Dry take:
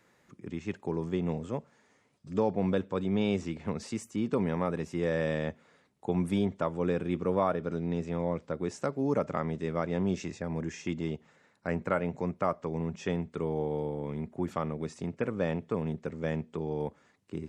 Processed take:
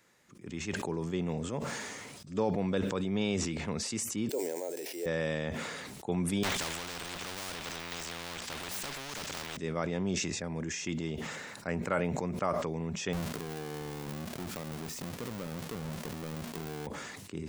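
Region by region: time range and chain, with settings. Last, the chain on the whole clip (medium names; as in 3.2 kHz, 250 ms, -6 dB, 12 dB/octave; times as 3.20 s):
4.29–5.06 s: sample-rate reducer 7.8 kHz + high-pass 260 Hz 24 dB/octave + static phaser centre 490 Hz, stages 4
6.43–9.57 s: hum notches 60/120/180/240 Hz + power-law waveshaper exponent 0.7 + spectrum-flattening compressor 10:1
13.13–16.87 s: square wave that keeps the level + compression 4:1, threshold -34 dBFS
whole clip: de-esser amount 100%; treble shelf 2.6 kHz +9.5 dB; decay stretcher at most 26 dB/s; trim -3.5 dB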